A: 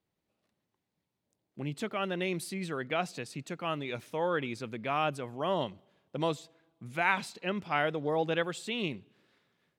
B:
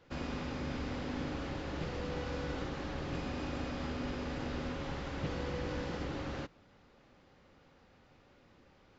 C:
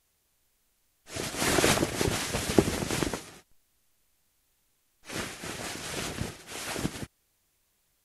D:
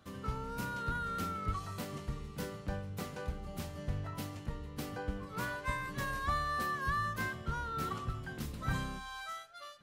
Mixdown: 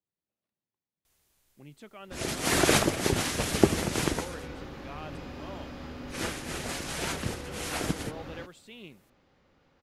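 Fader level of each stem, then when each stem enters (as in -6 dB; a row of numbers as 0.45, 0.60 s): -13.5 dB, -3.0 dB, +1.0 dB, off; 0.00 s, 2.00 s, 1.05 s, off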